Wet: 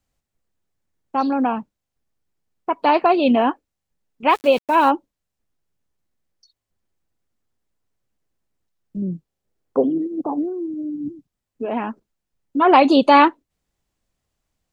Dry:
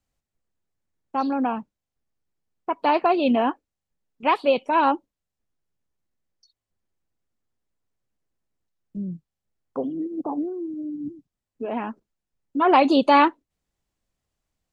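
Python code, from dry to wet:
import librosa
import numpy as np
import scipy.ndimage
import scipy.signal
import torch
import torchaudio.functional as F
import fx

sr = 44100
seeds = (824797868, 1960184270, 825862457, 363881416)

y = fx.sample_gate(x, sr, floor_db=-36.5, at=(4.29, 4.89), fade=0.02)
y = fx.peak_eq(y, sr, hz=410.0, db=8.0, octaves=1.3, at=(9.02, 9.98))
y = F.gain(torch.from_numpy(y), 4.0).numpy()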